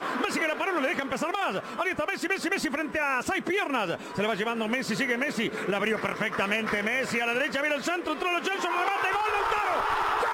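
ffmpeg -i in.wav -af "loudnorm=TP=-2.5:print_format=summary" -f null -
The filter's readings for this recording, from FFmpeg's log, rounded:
Input Integrated:    -27.2 LUFS
Input True Peak:     -14.0 dBTP
Input LRA:             1.6 LU
Input Threshold:     -37.2 LUFS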